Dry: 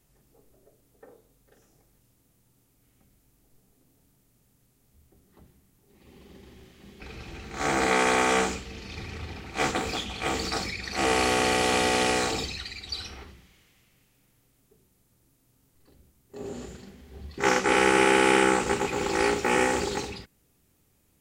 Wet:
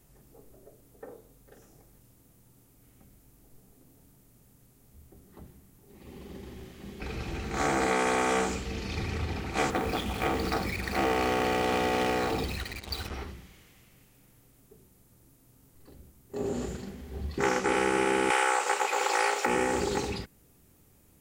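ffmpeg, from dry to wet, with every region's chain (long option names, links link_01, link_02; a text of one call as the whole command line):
ffmpeg -i in.wav -filter_complex "[0:a]asettb=1/sr,asplit=3[link_01][link_02][link_03];[link_01]atrim=end=9.704[link_04];[link_02]atrim=start=9.7:end=13.14,asetpts=PTS-STARTPTS,afade=type=in:duration=0.004:curve=qsin,afade=type=out:start_time=3.436:duration=0.004:curve=qsin,adynamicsmooth=sensitivity=2.5:basefreq=2400,acrusher=bits=6:mix=0:aa=0.5[link_05];[link_03]atrim=start=13.136[link_06];[link_04][link_05]acrossfade=duration=0.004:curve1=hsin:curve2=qsin[link_07];[link_07][link_06]acrossfade=duration=0.004:curve1=qsin:curve2=hsin,asettb=1/sr,asplit=3[link_08][link_09][link_10];[link_08]atrim=end=18.304[link_11];[link_09]atrim=start=18.3:end=19.46,asetpts=PTS-STARTPTS,afade=type=in:duration=0.004:curve=qsin,afade=type=out:start_time=1.156:duration=0.004:curve=qsin,highpass=frequency=560:width=0.5412,highpass=frequency=560:width=1.3066,acontrast=51[link_12];[link_10]atrim=start=19.456[link_13];[link_11][link_12]acrossfade=duration=0.004:curve1=hsin:curve2=qsin[link_14];[link_14][link_13]acrossfade=duration=0.004:curve1=qsin:curve2=hsin,equalizer=frequency=3600:width_type=o:width=2.4:gain=-4.5,acompressor=threshold=-33dB:ratio=3,volume=6.5dB" out.wav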